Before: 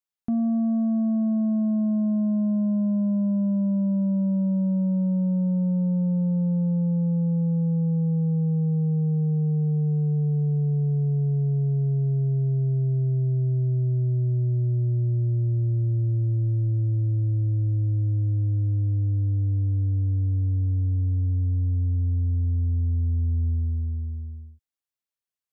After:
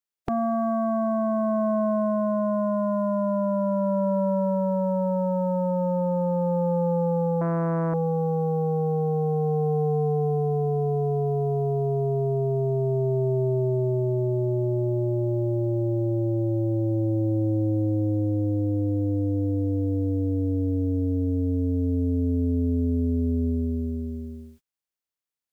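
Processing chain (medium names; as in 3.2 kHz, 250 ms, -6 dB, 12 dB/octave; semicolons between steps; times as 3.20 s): spectral peaks clipped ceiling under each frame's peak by 29 dB; 7.41–7.94 s: loudspeaker Doppler distortion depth 0.52 ms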